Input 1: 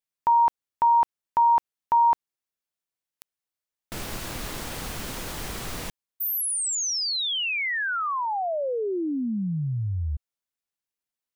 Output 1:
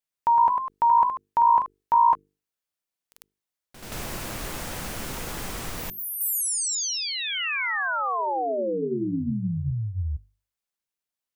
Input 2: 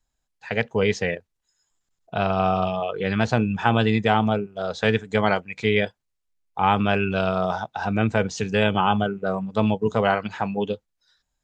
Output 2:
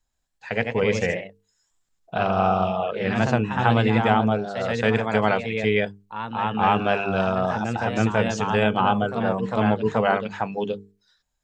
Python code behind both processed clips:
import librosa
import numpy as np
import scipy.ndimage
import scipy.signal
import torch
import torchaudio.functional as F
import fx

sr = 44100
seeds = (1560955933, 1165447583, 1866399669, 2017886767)

y = fx.echo_pitch(x, sr, ms=126, semitones=1, count=2, db_per_echo=-6.0)
y = fx.hum_notches(y, sr, base_hz=50, count=9)
y = fx.dynamic_eq(y, sr, hz=3900.0, q=1.5, threshold_db=-42.0, ratio=4.0, max_db=-5)